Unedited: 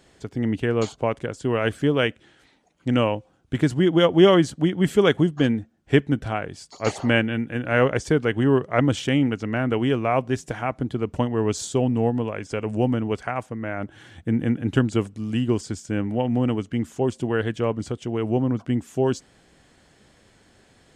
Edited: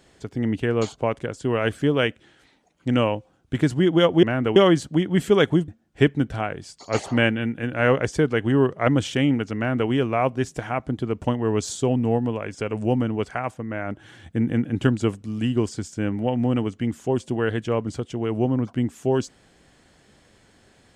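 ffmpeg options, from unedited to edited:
ffmpeg -i in.wav -filter_complex "[0:a]asplit=4[link_01][link_02][link_03][link_04];[link_01]atrim=end=4.232[link_05];[link_02]atrim=start=9.488:end=9.822[link_06];[link_03]atrim=start=4.228:end=5.352[link_07];[link_04]atrim=start=5.598[link_08];[link_05][link_06]acrossfade=duration=0.004:curve1=hsin:curve2=hsin[link_09];[link_09][link_07]acrossfade=duration=0.004:curve1=hsin:curve2=hsin[link_10];[link_10][link_08]acrossfade=duration=0.004:curve1=hsin:curve2=hsin" out.wav

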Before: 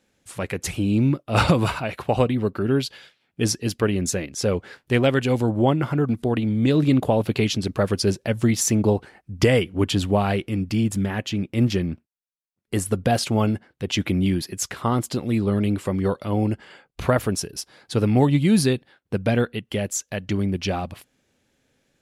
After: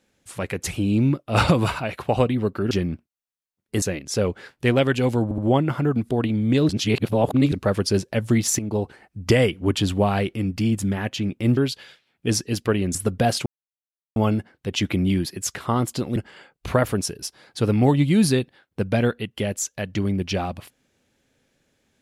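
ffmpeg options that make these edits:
ffmpeg -i in.wav -filter_complex "[0:a]asplit=12[link_01][link_02][link_03][link_04][link_05][link_06][link_07][link_08][link_09][link_10][link_11][link_12];[link_01]atrim=end=2.712[link_13];[link_02]atrim=start=11.698:end=12.812[link_14];[link_03]atrim=start=4.088:end=5.582[link_15];[link_04]atrim=start=5.508:end=5.582[link_16];[link_05]atrim=start=5.508:end=6.822[link_17];[link_06]atrim=start=6.818:end=7.652,asetpts=PTS-STARTPTS,areverse[link_18];[link_07]atrim=start=7.648:end=8.72,asetpts=PTS-STARTPTS,afade=type=out:start_time=1.068:duration=0.004:curve=hsin:silence=0.237137[link_19];[link_08]atrim=start=8.72:end=11.702,asetpts=PTS-STARTPTS,afade=type=in:duration=0.61:curve=qsin:silence=0.237137[link_20];[link_09]atrim=start=2.708:end=4.092[link_21];[link_10]atrim=start=12.808:end=13.32,asetpts=PTS-STARTPTS,afade=type=out:start_time=0.508:duration=0.004:curve=hsin,apad=pad_dur=0.7[link_22];[link_11]atrim=start=13.32:end=15.322,asetpts=PTS-STARTPTS,afade=type=in:duration=0.004:curve=hsin[link_23];[link_12]atrim=start=16.498[link_24];[link_13][link_14]acrossfade=duration=0.004:curve1=hsin:curve2=hsin[link_25];[link_25][link_15]acrossfade=duration=0.004:curve1=hsin:curve2=hsin[link_26];[link_26][link_16]acrossfade=duration=0.004:curve1=hsin:curve2=hsin[link_27];[link_27][link_17]acrossfade=duration=0.004:curve1=hsin:curve2=hsin[link_28];[link_28][link_18]acrossfade=duration=0.004:curve1=hsin:curve2=hsin[link_29];[link_19][link_20]concat=n=2:v=0:a=1[link_30];[link_29][link_30]acrossfade=duration=0.004:curve1=hsin:curve2=hsin[link_31];[link_31][link_21]acrossfade=duration=0.004:curve1=hsin:curve2=hsin[link_32];[link_22][link_23]concat=n=2:v=0:a=1[link_33];[link_32][link_33]acrossfade=duration=0.004:curve1=hsin:curve2=hsin[link_34];[link_34][link_24]acrossfade=duration=0.004:curve1=hsin:curve2=hsin" out.wav

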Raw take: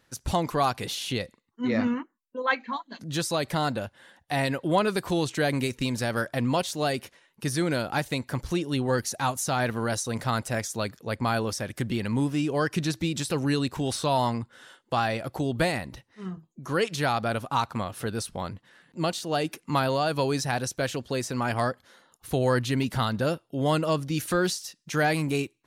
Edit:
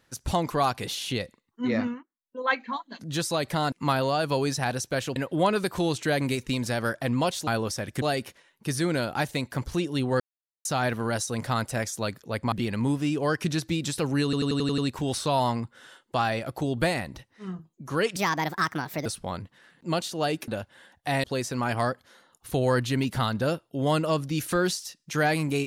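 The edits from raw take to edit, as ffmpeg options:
ffmpeg -i in.wav -filter_complex "[0:a]asplit=20[link_01][link_02][link_03][link_04][link_05][link_06][link_07][link_08][link_09][link_10][link_11][link_12][link_13][link_14][link_15][link_16][link_17][link_18][link_19][link_20];[link_01]atrim=end=2.04,asetpts=PTS-STARTPTS,afade=type=out:start_time=1.74:duration=0.3:silence=0.112202[link_21];[link_02]atrim=start=2.04:end=2.17,asetpts=PTS-STARTPTS,volume=-19dB[link_22];[link_03]atrim=start=2.17:end=3.722,asetpts=PTS-STARTPTS,afade=type=in:duration=0.3:silence=0.112202[link_23];[link_04]atrim=start=19.588:end=21.032[link_24];[link_05]atrim=start=4.478:end=6.792[link_25];[link_06]atrim=start=11.288:end=11.842[link_26];[link_07]atrim=start=6.788:end=8.97,asetpts=PTS-STARTPTS,afade=type=out:start_time=2.178:duration=0.004:curve=hsin[link_27];[link_08]atrim=start=8.97:end=9.42,asetpts=PTS-STARTPTS,volume=0[link_28];[link_09]atrim=start=9.42:end=11.292,asetpts=PTS-STARTPTS,afade=type=in:duration=0.004:curve=hsin[link_29];[link_10]atrim=start=11.838:end=13.652[link_30];[link_11]atrim=start=13.558:end=13.652[link_31];[link_12]atrim=start=13.558:end=13.652[link_32];[link_13]atrim=start=13.558:end=13.652[link_33];[link_14]atrim=start=13.558:end=13.652[link_34];[link_15]atrim=start=13.558:end=13.652[link_35];[link_16]atrim=start=13.558:end=16.944[link_36];[link_17]atrim=start=16.94:end=18.17,asetpts=PTS-STARTPTS,asetrate=60417,aresample=44100,atrim=end_sample=39593,asetpts=PTS-STARTPTS[link_37];[link_18]atrim=start=18.166:end=19.592[link_38];[link_19]atrim=start=3.718:end=4.482[link_39];[link_20]atrim=start=21.028[link_40];[link_21][link_22][link_23]concat=n=3:v=0:a=1[link_41];[link_41][link_24]acrossfade=duration=0.004:curve1=hsin:curve2=hsin[link_42];[link_42][link_25]acrossfade=duration=0.004:curve1=hsin:curve2=hsin[link_43];[link_43][link_26]acrossfade=duration=0.004:curve1=hsin:curve2=hsin[link_44];[link_27][link_28][link_29]concat=n=3:v=0:a=1[link_45];[link_44][link_45]acrossfade=duration=0.004:curve1=hsin:curve2=hsin[link_46];[link_46][link_30]acrossfade=duration=0.004:curve1=hsin:curve2=hsin[link_47];[link_47][link_31]acrossfade=duration=0.004:curve1=hsin:curve2=hsin[link_48];[link_48][link_32]acrossfade=duration=0.004:curve1=hsin:curve2=hsin[link_49];[link_49][link_33]acrossfade=duration=0.004:curve1=hsin:curve2=hsin[link_50];[link_50][link_34]acrossfade=duration=0.004:curve1=hsin:curve2=hsin[link_51];[link_51][link_35]acrossfade=duration=0.004:curve1=hsin:curve2=hsin[link_52];[link_52][link_36]acrossfade=duration=0.004:curve1=hsin:curve2=hsin[link_53];[link_53][link_37]acrossfade=duration=0.004:curve1=hsin:curve2=hsin[link_54];[link_54][link_38]acrossfade=duration=0.004:curve1=hsin:curve2=hsin[link_55];[link_55][link_39]acrossfade=duration=0.004:curve1=hsin:curve2=hsin[link_56];[link_56][link_40]acrossfade=duration=0.004:curve1=hsin:curve2=hsin" out.wav

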